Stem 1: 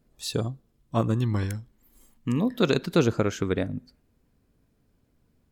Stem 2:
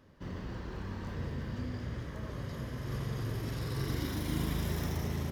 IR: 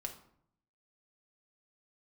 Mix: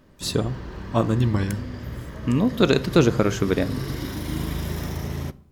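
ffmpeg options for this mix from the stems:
-filter_complex "[0:a]volume=1.5dB,asplit=2[a][b];[b]volume=-5dB[c];[1:a]volume=2.5dB,asplit=2[d][e];[e]volume=-6dB[f];[2:a]atrim=start_sample=2205[g];[c][f]amix=inputs=2:normalize=0[h];[h][g]afir=irnorm=-1:irlink=0[i];[a][d][i]amix=inputs=3:normalize=0"

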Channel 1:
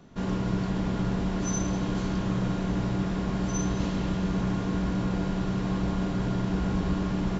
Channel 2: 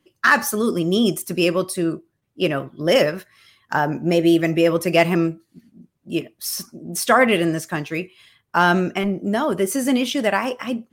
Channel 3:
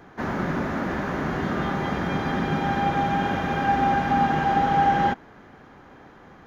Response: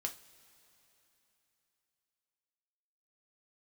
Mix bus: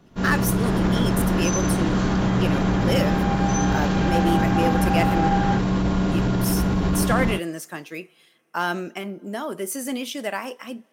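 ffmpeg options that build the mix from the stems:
-filter_complex "[0:a]dynaudnorm=f=130:g=3:m=10.5dB,alimiter=limit=-12dB:level=0:latency=1:release=21,volume=-2dB[a];[1:a]highpass=200,highshelf=f=6.4k:g=8,volume=-10dB,asplit=2[b][c];[c]volume=-12.5dB[d];[2:a]adelay=450,volume=-4dB[e];[3:a]atrim=start_sample=2205[f];[d][f]afir=irnorm=-1:irlink=0[g];[a][b][e][g]amix=inputs=4:normalize=0"

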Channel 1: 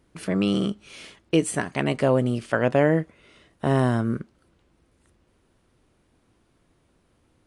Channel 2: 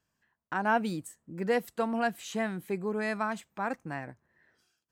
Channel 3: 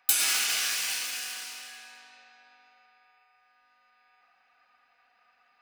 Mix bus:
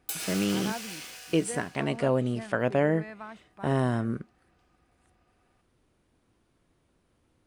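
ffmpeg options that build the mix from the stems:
-filter_complex "[0:a]volume=-5dB[a];[1:a]acrossover=split=3900[b][c];[c]acompressor=threshold=-60dB:ratio=4:attack=1:release=60[d];[b][d]amix=inputs=2:normalize=0,volume=-11dB[e];[2:a]equalizer=f=510:w=0.93:g=11.5,volume=-11dB[f];[a][e][f]amix=inputs=3:normalize=0"

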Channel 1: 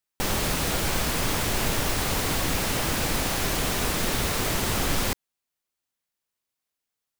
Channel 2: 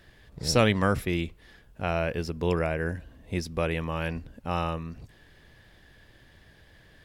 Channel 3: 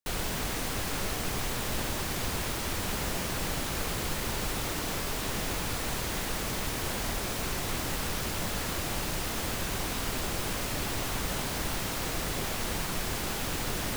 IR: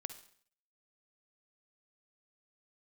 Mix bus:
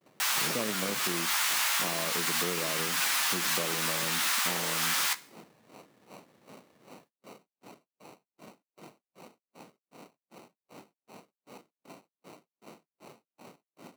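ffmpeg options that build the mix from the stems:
-filter_complex "[0:a]highpass=f=1k:w=0.5412,highpass=f=1k:w=1.3066,flanger=delay=7.3:depth=9.8:regen=35:speed=0.32:shape=sinusoidal,volume=2dB,asplit=2[a][b];[b]volume=-4.5dB[c];[1:a]volume=-3dB,asplit=3[d][e][f];[e]volume=-12.5dB[g];[2:a]alimiter=level_in=4dB:limit=-24dB:level=0:latency=1:release=136,volume=-4dB,aeval=exprs='val(0)*pow(10,-34*(0.5-0.5*cos(2*PI*2.6*n/s))/20)':c=same,volume=-8dB[h];[f]apad=whole_len=317475[i];[a][i]sidechaincompress=threshold=-35dB:ratio=8:attack=16:release=131[j];[d][h]amix=inputs=2:normalize=0,acrusher=samples=26:mix=1:aa=0.000001,acompressor=threshold=-32dB:ratio=6,volume=0dB[k];[3:a]atrim=start_sample=2205[l];[c][g]amix=inputs=2:normalize=0[m];[m][l]afir=irnorm=-1:irlink=0[n];[j][k][n]amix=inputs=3:normalize=0,agate=range=-32dB:threshold=-58dB:ratio=16:detection=peak,highpass=f=170:w=0.5412,highpass=f=170:w=1.3066"

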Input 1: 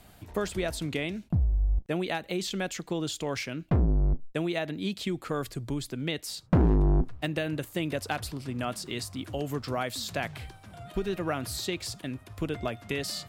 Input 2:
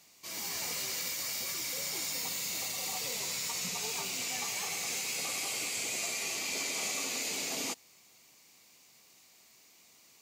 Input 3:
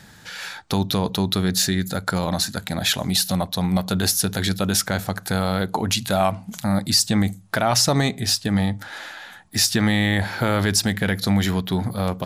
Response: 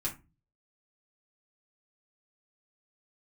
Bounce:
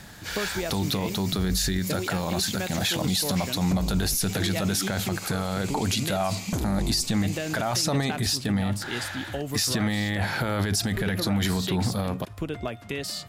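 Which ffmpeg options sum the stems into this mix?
-filter_complex "[0:a]volume=2dB[a];[1:a]alimiter=level_in=5dB:limit=-24dB:level=0:latency=1,volume=-5dB,volume=0dB[b];[2:a]volume=1dB[c];[a][b]amix=inputs=2:normalize=0,acompressor=threshold=-25dB:ratio=6,volume=0dB[d];[c][d]amix=inputs=2:normalize=0,alimiter=limit=-16dB:level=0:latency=1:release=26"

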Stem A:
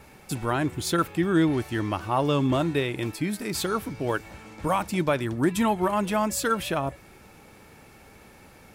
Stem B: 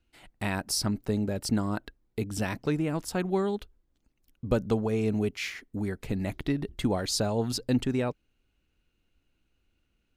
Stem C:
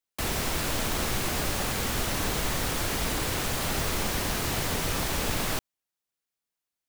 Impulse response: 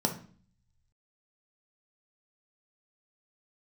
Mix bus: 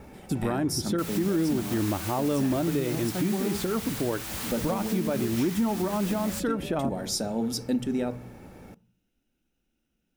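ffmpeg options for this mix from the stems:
-filter_complex "[0:a]tiltshelf=f=970:g=6,acrusher=bits=10:mix=0:aa=0.000001,acontrast=49,volume=-6.5dB,asplit=2[a][b];[b]volume=-22.5dB[c];[1:a]highshelf=f=6.3k:g=11.5,volume=-7.5dB,asplit=2[d][e];[e]volume=-9.5dB[f];[2:a]highpass=1k,highshelf=f=9.7k:g=6.5,asoftclip=type=tanh:threshold=-26dB,adelay=800,volume=-3dB[g];[3:a]atrim=start_sample=2205[h];[c][f]amix=inputs=2:normalize=0[i];[i][h]afir=irnorm=-1:irlink=0[j];[a][d][g][j]amix=inputs=4:normalize=0,alimiter=limit=-18dB:level=0:latency=1:release=228"

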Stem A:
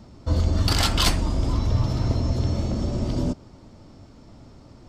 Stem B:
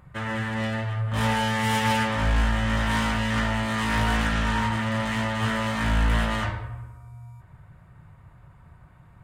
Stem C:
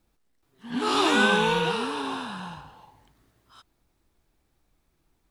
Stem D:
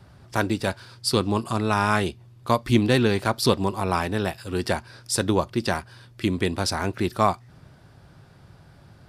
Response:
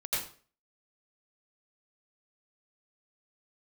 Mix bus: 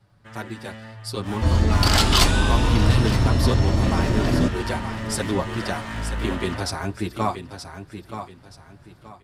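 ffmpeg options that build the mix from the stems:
-filter_complex "[0:a]adelay=1150,volume=-1dB,asplit=2[a][b];[b]volume=-17dB[c];[1:a]adelay=100,volume=-13dB,asplit=2[d][e];[e]volume=-22.5dB[f];[2:a]equalizer=f=8.6k:w=0.45:g=10,adelay=1150,volume=-12dB[g];[3:a]asplit=2[h][i];[i]adelay=6.8,afreqshift=0.71[j];[h][j]amix=inputs=2:normalize=1,volume=-7dB,asplit=2[k][l];[l]volume=-9.5dB[m];[c][f][m]amix=inputs=3:normalize=0,aecho=0:1:926|1852|2778|3704:1|0.29|0.0841|0.0244[n];[a][d][g][k][n]amix=inputs=5:normalize=0,dynaudnorm=f=510:g=5:m=7dB"

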